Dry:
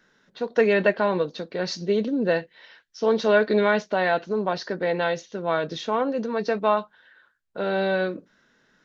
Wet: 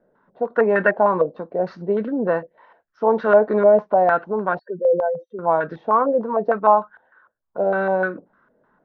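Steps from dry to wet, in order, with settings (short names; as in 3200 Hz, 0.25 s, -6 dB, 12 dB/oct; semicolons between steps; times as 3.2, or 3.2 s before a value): 4.59–5.39 spectral contrast raised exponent 3.7; stepped low-pass 6.6 Hz 610–1500 Hz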